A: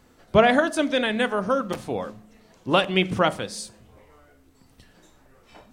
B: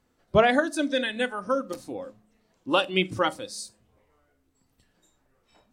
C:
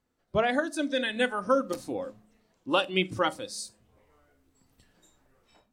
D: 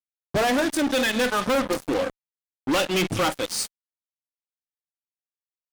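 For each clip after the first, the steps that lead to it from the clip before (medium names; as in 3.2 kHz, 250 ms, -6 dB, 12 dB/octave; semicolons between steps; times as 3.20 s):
spectral noise reduction 11 dB; trim -2 dB
level rider gain up to 11.5 dB; trim -8.5 dB
feedback echo behind a high-pass 200 ms, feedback 44%, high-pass 2.1 kHz, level -19 dB; fuzz box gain 36 dB, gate -40 dBFS; trim -6 dB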